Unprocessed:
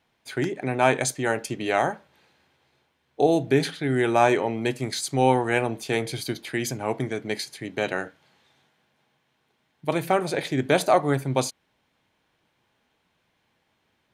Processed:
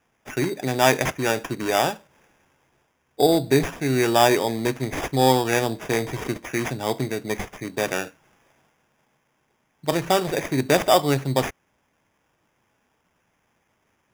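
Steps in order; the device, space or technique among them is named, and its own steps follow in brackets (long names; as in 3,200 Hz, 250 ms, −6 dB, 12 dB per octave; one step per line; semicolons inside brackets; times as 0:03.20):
crushed at another speed (tape speed factor 0.5×; decimation without filtering 21×; tape speed factor 2×)
level +2 dB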